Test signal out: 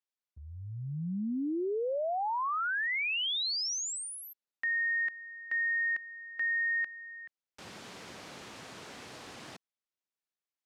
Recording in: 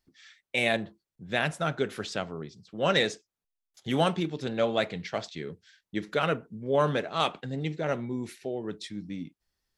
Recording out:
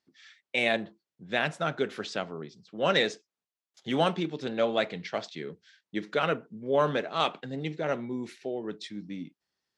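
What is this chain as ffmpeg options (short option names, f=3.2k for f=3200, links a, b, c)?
-af "highpass=170,lowpass=6.4k"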